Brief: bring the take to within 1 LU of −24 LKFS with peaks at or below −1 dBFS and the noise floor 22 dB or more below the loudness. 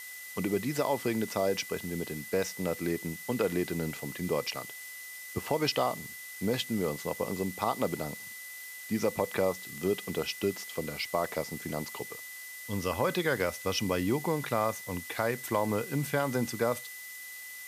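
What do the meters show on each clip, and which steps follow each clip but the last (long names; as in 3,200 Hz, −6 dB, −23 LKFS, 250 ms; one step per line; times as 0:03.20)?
interfering tone 2,000 Hz; level of the tone −44 dBFS; background noise floor −44 dBFS; target noise floor −55 dBFS; integrated loudness −32.5 LKFS; sample peak −13.0 dBFS; target loudness −24.0 LKFS
→ notch filter 2,000 Hz, Q 30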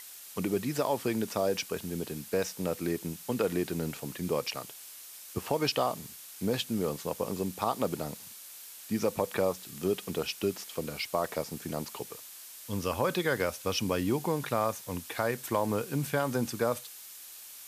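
interfering tone none found; background noise floor −48 dBFS; target noise floor −55 dBFS
→ broadband denoise 7 dB, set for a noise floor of −48 dBFS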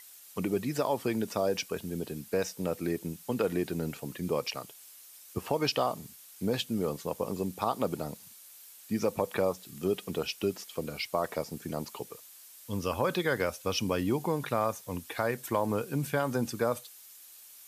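background noise floor −52 dBFS; target noise floor −55 dBFS
→ broadband denoise 6 dB, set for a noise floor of −52 dBFS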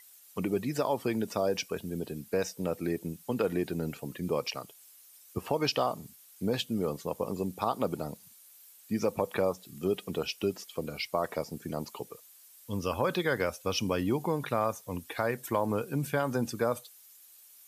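background noise floor −56 dBFS; integrated loudness −32.5 LKFS; sample peak −13.5 dBFS; target loudness −24.0 LKFS
→ level +8.5 dB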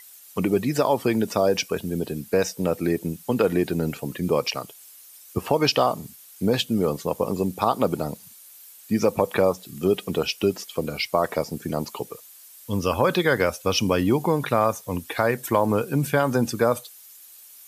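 integrated loudness −24.0 LKFS; sample peak −5.0 dBFS; background noise floor −48 dBFS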